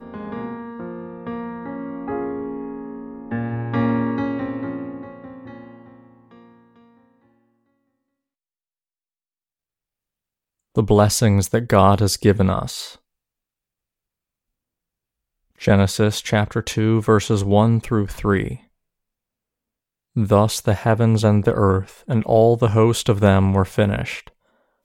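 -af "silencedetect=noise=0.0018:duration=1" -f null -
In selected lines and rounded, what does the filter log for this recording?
silence_start: 7.48
silence_end: 10.75 | silence_duration: 3.28
silence_start: 13.00
silence_end: 15.55 | silence_duration: 2.56
silence_start: 18.68
silence_end: 20.15 | silence_duration: 1.48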